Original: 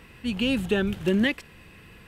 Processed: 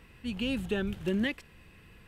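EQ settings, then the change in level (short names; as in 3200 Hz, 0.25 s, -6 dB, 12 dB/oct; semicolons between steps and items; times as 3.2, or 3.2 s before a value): low shelf 72 Hz +7 dB; -7.5 dB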